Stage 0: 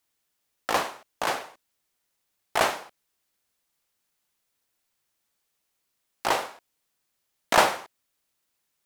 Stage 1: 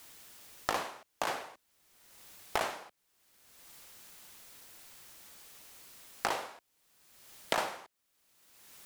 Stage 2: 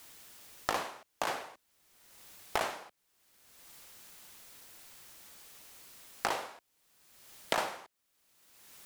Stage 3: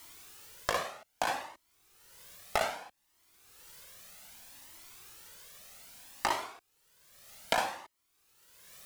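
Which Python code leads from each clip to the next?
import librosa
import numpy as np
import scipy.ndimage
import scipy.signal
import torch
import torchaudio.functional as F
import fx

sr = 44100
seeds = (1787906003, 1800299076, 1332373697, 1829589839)

y1 = fx.band_squash(x, sr, depth_pct=100)
y1 = F.gain(torch.from_numpy(y1), -7.0).numpy()
y2 = y1
y3 = fx.comb_cascade(y2, sr, direction='rising', hz=0.63)
y3 = F.gain(torch.from_numpy(y3), 6.0).numpy()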